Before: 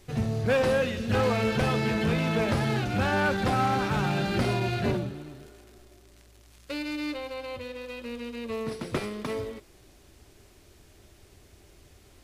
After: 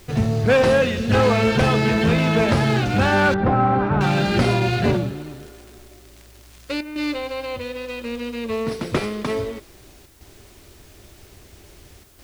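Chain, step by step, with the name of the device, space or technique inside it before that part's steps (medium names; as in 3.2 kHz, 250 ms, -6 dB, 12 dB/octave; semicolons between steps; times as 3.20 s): worn cassette (low-pass 9.5 kHz 12 dB/octave; wow and flutter 17 cents; level dips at 6.81/10.06/12.04 s, 146 ms -8 dB; white noise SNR 34 dB); 3.34–4.01 s: low-pass 1.3 kHz 12 dB/octave; trim +8 dB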